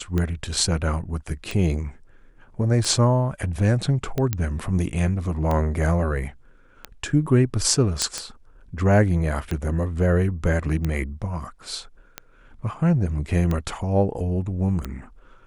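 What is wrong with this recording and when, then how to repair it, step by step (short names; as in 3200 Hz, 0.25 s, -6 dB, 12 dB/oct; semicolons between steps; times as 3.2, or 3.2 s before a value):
tick 45 rpm -13 dBFS
4.33 pop -9 dBFS
8.02 pop -7 dBFS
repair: de-click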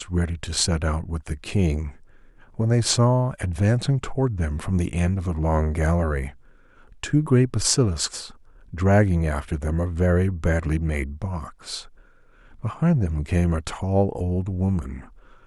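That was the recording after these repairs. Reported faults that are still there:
none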